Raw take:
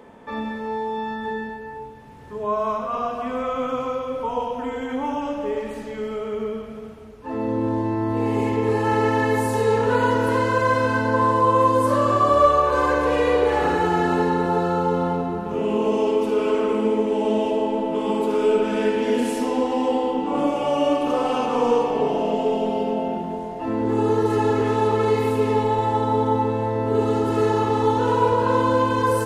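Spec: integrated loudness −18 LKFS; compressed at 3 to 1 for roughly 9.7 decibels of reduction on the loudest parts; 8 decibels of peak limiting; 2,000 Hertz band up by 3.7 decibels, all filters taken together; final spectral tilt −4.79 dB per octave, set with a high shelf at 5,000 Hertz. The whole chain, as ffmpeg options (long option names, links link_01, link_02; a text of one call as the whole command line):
ffmpeg -i in.wav -af "equalizer=frequency=2000:width_type=o:gain=4.5,highshelf=frequency=5000:gain=3.5,acompressor=threshold=-24dB:ratio=3,volume=11.5dB,alimiter=limit=-9.5dB:level=0:latency=1" out.wav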